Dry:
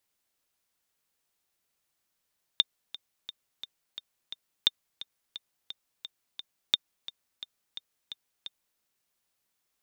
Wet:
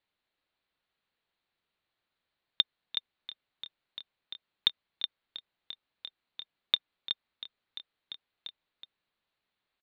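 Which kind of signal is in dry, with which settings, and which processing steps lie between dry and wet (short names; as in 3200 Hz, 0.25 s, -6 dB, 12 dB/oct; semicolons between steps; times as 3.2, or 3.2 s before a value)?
metronome 174 bpm, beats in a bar 6, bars 3, 3620 Hz, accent 17.5 dB -7.5 dBFS
elliptic low-pass 4200 Hz, stop band 40 dB; echo 0.371 s -7 dB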